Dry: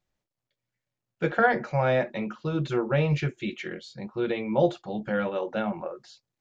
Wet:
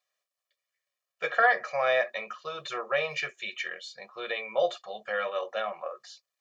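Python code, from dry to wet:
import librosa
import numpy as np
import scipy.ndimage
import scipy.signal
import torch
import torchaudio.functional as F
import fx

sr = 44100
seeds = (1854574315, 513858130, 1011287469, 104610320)

y = scipy.signal.sosfilt(scipy.signal.butter(2, 850.0, 'highpass', fs=sr, output='sos'), x)
y = y + 0.89 * np.pad(y, (int(1.7 * sr / 1000.0), 0))[:len(y)]
y = F.gain(torch.from_numpy(y), 1.0).numpy()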